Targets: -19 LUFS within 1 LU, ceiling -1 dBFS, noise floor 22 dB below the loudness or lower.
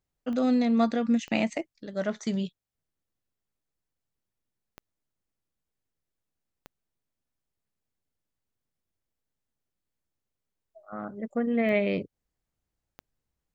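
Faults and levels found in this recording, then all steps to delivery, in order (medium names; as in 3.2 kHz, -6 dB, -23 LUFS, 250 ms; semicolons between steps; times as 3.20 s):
clicks found 6; loudness -28.0 LUFS; peak level -12.0 dBFS; loudness target -19.0 LUFS
-> de-click; trim +9 dB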